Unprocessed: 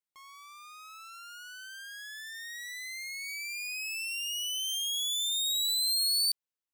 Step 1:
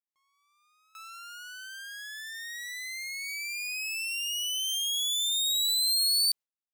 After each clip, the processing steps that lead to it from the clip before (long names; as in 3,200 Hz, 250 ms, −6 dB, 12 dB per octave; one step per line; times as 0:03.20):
automatic gain control gain up to 5 dB
noise gate with hold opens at −39 dBFS
level −2.5 dB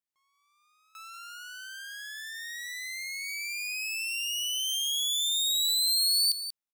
single-tap delay 186 ms −11 dB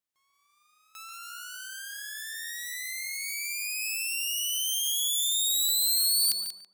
spectral envelope flattened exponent 0.6
soft clipping −16.5 dBFS, distortion −24 dB
tape delay 141 ms, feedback 35%, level −3 dB, low-pass 1,500 Hz
level +1.5 dB